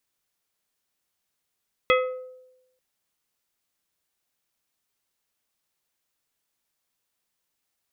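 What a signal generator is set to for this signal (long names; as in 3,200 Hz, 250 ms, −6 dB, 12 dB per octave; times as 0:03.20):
struck glass plate, lowest mode 510 Hz, decay 0.94 s, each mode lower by 2 dB, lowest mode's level −16.5 dB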